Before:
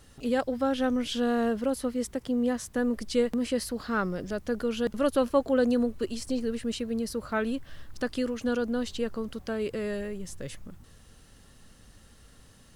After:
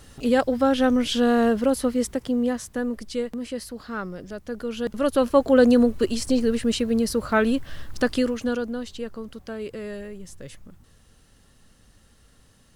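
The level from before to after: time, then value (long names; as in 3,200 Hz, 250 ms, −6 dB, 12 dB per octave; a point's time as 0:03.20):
0:01.97 +7 dB
0:03.28 −3 dB
0:04.45 −3 dB
0:05.61 +8.5 dB
0:08.12 +8.5 dB
0:08.82 −2 dB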